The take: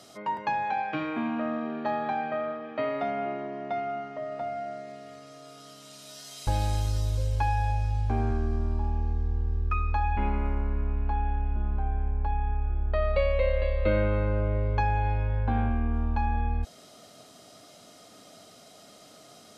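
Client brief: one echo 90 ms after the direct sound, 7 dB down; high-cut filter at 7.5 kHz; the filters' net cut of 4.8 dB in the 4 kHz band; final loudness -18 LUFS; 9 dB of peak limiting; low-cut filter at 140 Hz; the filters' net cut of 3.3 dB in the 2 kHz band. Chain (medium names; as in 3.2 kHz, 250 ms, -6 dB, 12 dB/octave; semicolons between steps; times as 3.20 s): high-pass 140 Hz; low-pass 7.5 kHz; peaking EQ 2 kHz -3 dB; peaking EQ 4 kHz -5 dB; peak limiter -23 dBFS; delay 90 ms -7 dB; trim +14 dB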